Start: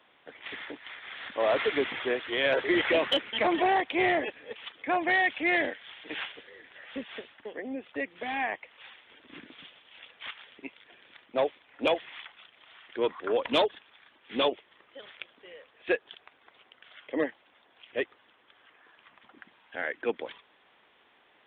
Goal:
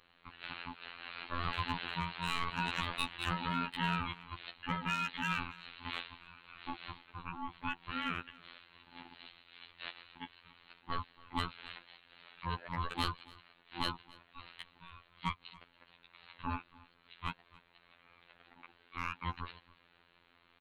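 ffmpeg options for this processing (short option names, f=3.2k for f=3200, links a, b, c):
-filter_complex "[0:a]acrossover=split=160|3000[a][b][c];[b]acompressor=threshold=-29dB:ratio=4[d];[a][d][c]amix=inputs=3:normalize=0,acrossover=split=940[e][f];[f]asoftclip=type=hard:threshold=-27.5dB[g];[e][g]amix=inputs=2:normalize=0,aeval=exprs='val(0)*sin(2*PI*540*n/s)':c=same,asplit=2[h][i];[i]aecho=0:1:291:0.075[j];[h][j]amix=inputs=2:normalize=0,asetrate=45938,aresample=44100,afftfilt=real='hypot(re,im)*cos(PI*b)':imag='0':win_size=2048:overlap=0.75,volume=1.5dB"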